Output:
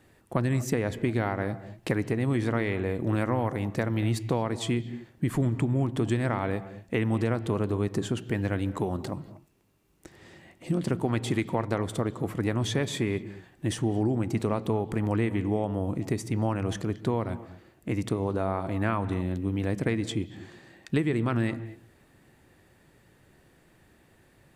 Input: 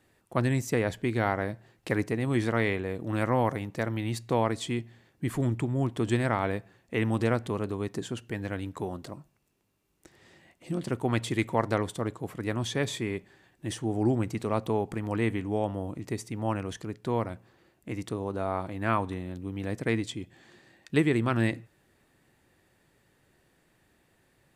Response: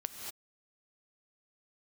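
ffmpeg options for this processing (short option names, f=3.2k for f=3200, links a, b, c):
-filter_complex "[0:a]acompressor=threshold=-30dB:ratio=6,asplit=2[a][b];[1:a]atrim=start_sample=2205,lowpass=3.5k,lowshelf=f=460:g=10[c];[b][c]afir=irnorm=-1:irlink=0,volume=-11.5dB[d];[a][d]amix=inputs=2:normalize=0,volume=4dB"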